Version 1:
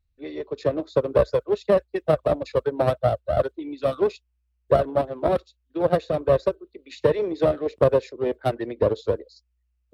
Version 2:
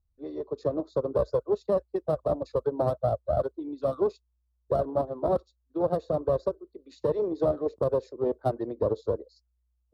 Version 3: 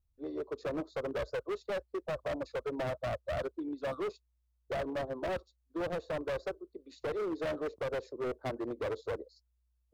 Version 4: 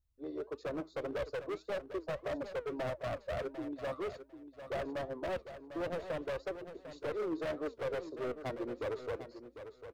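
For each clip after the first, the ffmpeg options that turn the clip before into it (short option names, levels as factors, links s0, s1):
-filter_complex "[0:a]firequalizer=gain_entry='entry(1100,0);entry(1600,-12);entry(2300,-21);entry(4400,-7)':delay=0.05:min_phase=1,acrossover=split=2100[s0][s1];[s0]alimiter=limit=0.224:level=0:latency=1:release=54[s2];[s2][s1]amix=inputs=2:normalize=0,volume=0.75"
-af "volume=31.6,asoftclip=hard,volume=0.0316,volume=0.794"
-filter_complex "[0:a]flanger=delay=3.1:depth=3.4:regen=86:speed=1.7:shape=triangular,asplit=2[s0][s1];[s1]aecho=0:1:749|1498:0.282|0.0451[s2];[s0][s2]amix=inputs=2:normalize=0,volume=1.26"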